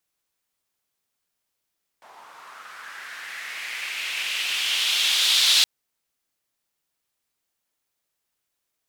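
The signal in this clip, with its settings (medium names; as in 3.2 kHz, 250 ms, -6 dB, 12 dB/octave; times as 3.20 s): swept filtered noise white, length 3.62 s bandpass, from 780 Hz, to 3.8 kHz, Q 3.1, linear, gain ramp +26 dB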